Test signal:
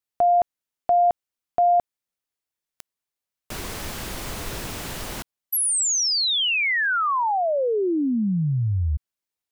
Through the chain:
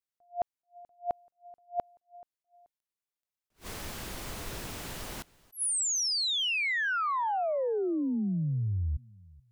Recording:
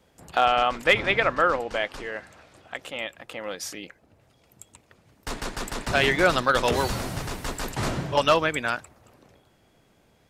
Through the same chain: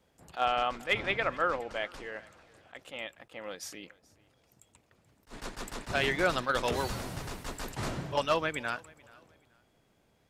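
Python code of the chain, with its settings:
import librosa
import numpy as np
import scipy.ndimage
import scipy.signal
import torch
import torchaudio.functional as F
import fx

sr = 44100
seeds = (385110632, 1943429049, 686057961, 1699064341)

y = fx.echo_feedback(x, sr, ms=431, feedback_pct=28, wet_db=-24)
y = fx.attack_slew(y, sr, db_per_s=310.0)
y = y * librosa.db_to_amplitude(-7.5)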